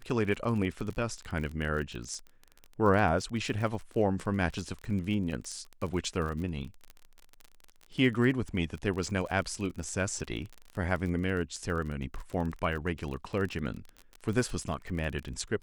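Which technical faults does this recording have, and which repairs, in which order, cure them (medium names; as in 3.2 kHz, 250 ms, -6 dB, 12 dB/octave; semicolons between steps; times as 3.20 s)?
crackle 29 per s -35 dBFS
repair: de-click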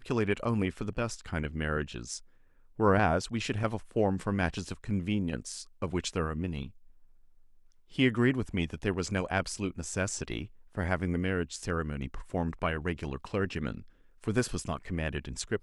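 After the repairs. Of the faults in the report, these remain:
nothing left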